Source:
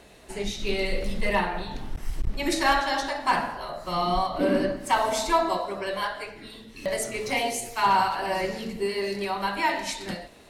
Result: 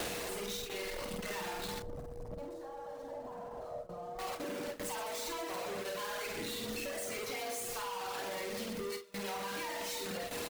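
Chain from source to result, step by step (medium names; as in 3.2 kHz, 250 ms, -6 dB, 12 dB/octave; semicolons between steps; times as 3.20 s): one-bit comparator; bass shelf 100 Hz -9.5 dB; reverb removal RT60 1.9 s; reverse bouncing-ball echo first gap 50 ms, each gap 1.4×, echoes 5; compression 20:1, threshold -33 dBFS, peak gain reduction 10.5 dB; whistle 480 Hz -40 dBFS; gate with hold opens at -27 dBFS; 1.82–4.19 s: FFT filter 130 Hz 0 dB, 350 Hz -7 dB, 590 Hz +1 dB, 2.4 kHz -24 dB, 7.5 kHz -22 dB, 13 kHz -25 dB; trim -4 dB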